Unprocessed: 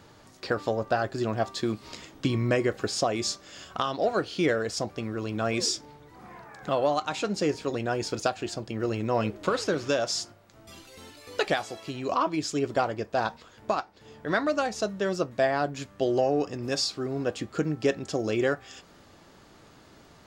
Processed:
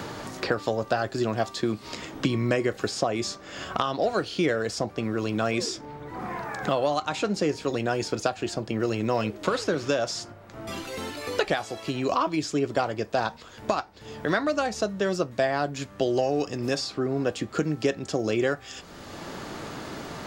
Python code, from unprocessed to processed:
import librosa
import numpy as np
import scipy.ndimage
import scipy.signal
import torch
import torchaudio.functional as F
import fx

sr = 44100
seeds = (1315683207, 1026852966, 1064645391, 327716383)

y = fx.band_squash(x, sr, depth_pct=70)
y = F.gain(torch.from_numpy(y), 1.0).numpy()